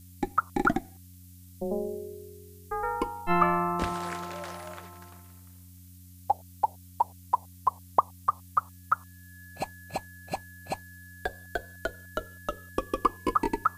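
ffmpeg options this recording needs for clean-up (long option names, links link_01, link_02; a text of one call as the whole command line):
ffmpeg -i in.wav -af "adeclick=threshold=4,bandreject=frequency=90.6:width_type=h:width=4,bandreject=frequency=181.2:width_type=h:width=4,bandreject=frequency=271.8:width_type=h:width=4,bandreject=frequency=1700:width=30,afftdn=noise_reduction=24:noise_floor=-50" out.wav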